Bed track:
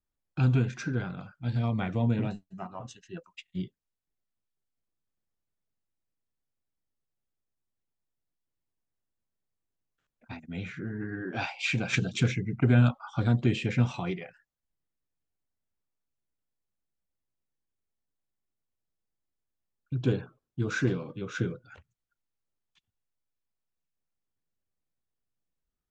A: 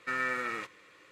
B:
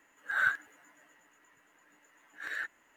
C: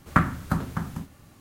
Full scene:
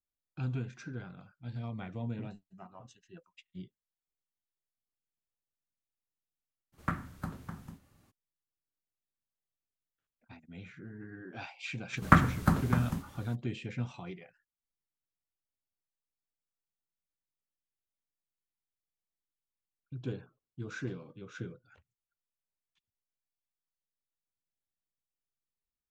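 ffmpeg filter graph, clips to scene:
-filter_complex "[3:a]asplit=2[a][b];[0:a]volume=-11dB[c];[a]atrim=end=1.4,asetpts=PTS-STARTPTS,volume=-13.5dB,afade=t=in:d=0.02,afade=t=out:st=1.38:d=0.02,adelay=6720[d];[b]atrim=end=1.4,asetpts=PTS-STARTPTS,volume=-0.5dB,afade=t=in:d=0.02,afade=t=out:st=1.38:d=0.02,adelay=11960[e];[c][d][e]amix=inputs=3:normalize=0"

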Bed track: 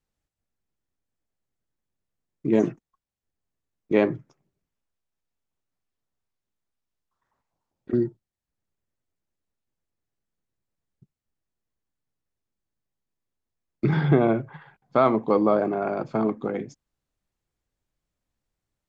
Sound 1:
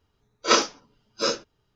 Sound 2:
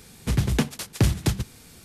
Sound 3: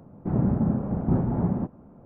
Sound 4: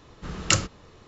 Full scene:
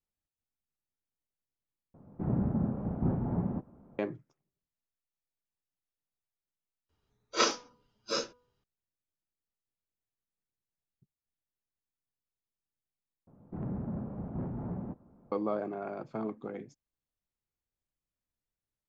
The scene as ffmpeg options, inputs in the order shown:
-filter_complex "[3:a]asplit=2[a][b];[0:a]volume=-12dB[c];[1:a]bandreject=f=245.6:t=h:w=4,bandreject=f=491.2:t=h:w=4,bandreject=f=736.8:t=h:w=4,bandreject=f=982.4:t=h:w=4,bandreject=f=1.228k:t=h:w=4,bandreject=f=1.4736k:t=h:w=4[d];[b]asoftclip=type=tanh:threshold=-20dB[e];[c]asplit=4[f][g][h][i];[f]atrim=end=1.944[j];[a]atrim=end=2.05,asetpts=PTS-STARTPTS,volume=-7dB[k];[g]atrim=start=3.986:end=6.894[l];[d]atrim=end=1.75,asetpts=PTS-STARTPTS,volume=-8dB[m];[h]atrim=start=8.636:end=13.274[n];[e]atrim=end=2.05,asetpts=PTS-STARTPTS,volume=-10.5dB[o];[i]atrim=start=15.316[p];[j][k]acrossfade=d=0.004:c1=hsin:c2=hsin[q];[q][l]acrossfade=d=0.004:c1=hsin:c2=hsin[r];[r][m]acrossfade=d=0.004:c1=hsin:c2=hsin[s];[s][n]acrossfade=d=0.004:c1=hsin:c2=hsin[t];[t][o]acrossfade=d=0.004:c1=hsin:c2=hsin[u];[u][p]acrossfade=d=0.004:c1=hsin:c2=hsin"

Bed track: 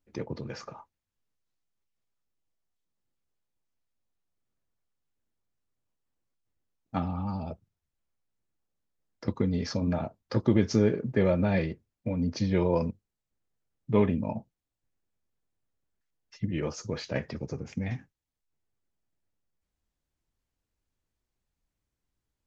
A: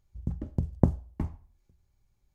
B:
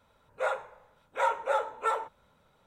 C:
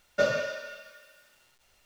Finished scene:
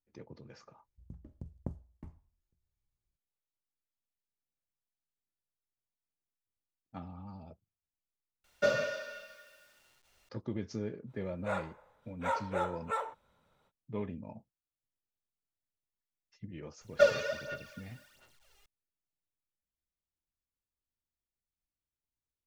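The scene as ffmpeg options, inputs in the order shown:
-filter_complex "[3:a]asplit=2[a][b];[0:a]volume=-14.5dB[c];[1:a]bandreject=f=770:w=12[d];[b]aphaser=in_gain=1:out_gain=1:delay=2.5:decay=0.68:speed=1.4:type=sinusoidal[e];[c]asplit=2[f][g];[f]atrim=end=8.444[h];[a]atrim=end=1.85,asetpts=PTS-STARTPTS,volume=-3.5dB[i];[g]atrim=start=10.286[j];[d]atrim=end=2.34,asetpts=PTS-STARTPTS,volume=-17dB,afade=t=in:d=0.004:c=hsin,afade=t=out:st=2.336:d=0.004:c=hsin,adelay=830[k];[2:a]atrim=end=2.66,asetpts=PTS-STARTPTS,volume=-6dB,afade=t=in:d=0.05,afade=t=out:st=2.61:d=0.05,adelay=487746S[l];[e]atrim=end=1.85,asetpts=PTS-STARTPTS,volume=-4.5dB,afade=t=in:d=0.004:c=hsin,afade=t=out:st=1.846:d=0.004:c=hsin,adelay=16810[m];[h][i]acrossfade=d=0.004:c1=hsin:c2=hsin[n];[n][j]acrossfade=d=0.004:c1=hsin:c2=hsin[o];[o][k][l][m]amix=inputs=4:normalize=0"

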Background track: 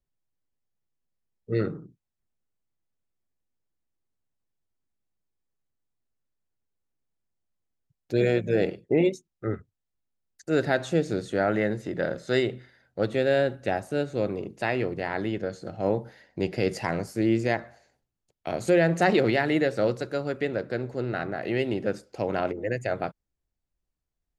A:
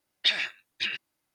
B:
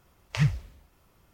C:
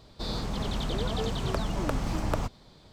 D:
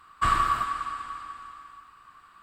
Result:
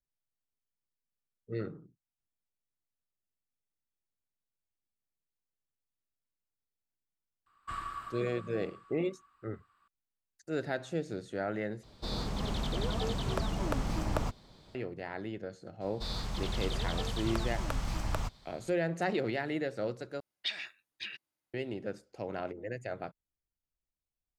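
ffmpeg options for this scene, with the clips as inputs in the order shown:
-filter_complex "[3:a]asplit=2[a][b];[0:a]volume=-10.5dB[c];[b]equalizer=f=330:t=o:w=2.3:g=-9[d];[c]asplit=3[e][f][g];[e]atrim=end=11.834[h];[a]atrim=end=2.92,asetpts=PTS-STARTPTS,volume=-3dB[i];[f]atrim=start=14.746:end=20.204[j];[1:a]atrim=end=1.34,asetpts=PTS-STARTPTS,volume=-11.5dB[k];[g]atrim=start=21.536[l];[4:a]atrim=end=2.42,asetpts=PTS-STARTPTS,volume=-16.5dB,afade=t=in:d=0.004:c=hsin,afade=t=out:st=2.416:d=0.004:c=hsin,adelay=328986S[m];[d]atrim=end=2.92,asetpts=PTS-STARTPTS,volume=-2dB,afade=t=in:d=0.004:c=hsin,afade=t=out:st=2.916:d=0.004:c=hsin,adelay=15810[n];[h][i]acrossfade=d=0.004:c1=hsin:c2=hsin[o];[o][j]acrossfade=d=0.004:c1=hsin:c2=hsin[p];[p][k]acrossfade=d=0.004:c1=hsin:c2=hsin[q];[q][l]acrossfade=d=0.004:c1=hsin:c2=hsin[r];[r][m][n]amix=inputs=3:normalize=0"

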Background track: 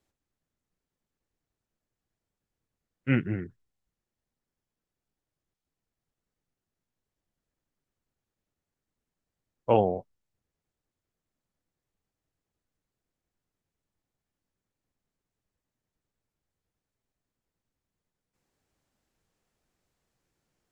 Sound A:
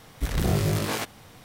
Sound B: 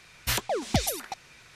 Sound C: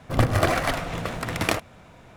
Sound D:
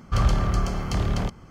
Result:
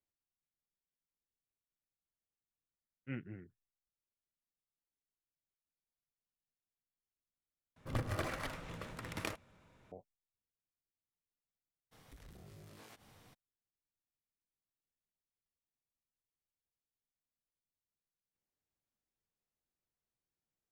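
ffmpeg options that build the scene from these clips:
-filter_complex "[0:a]volume=-18dB[a];[3:a]bandreject=f=710:w=6.2[b];[1:a]acompressor=threshold=-41dB:ratio=6:attack=3.2:release=140:knee=1:detection=peak[c];[a]asplit=2[d][e];[d]atrim=end=7.764[f];[b]atrim=end=2.16,asetpts=PTS-STARTPTS,volume=-16.5dB[g];[e]atrim=start=9.916[h];[c]atrim=end=1.44,asetpts=PTS-STARTPTS,volume=-13.5dB,afade=t=in:d=0.02,afade=t=out:st=1.42:d=0.02,adelay=11910[i];[f][g]acrossfade=d=0.004:c1=hsin:c2=hsin[j];[j][h]acrossfade=d=0.004:c1=hsin:c2=hsin[k];[k][i]amix=inputs=2:normalize=0"

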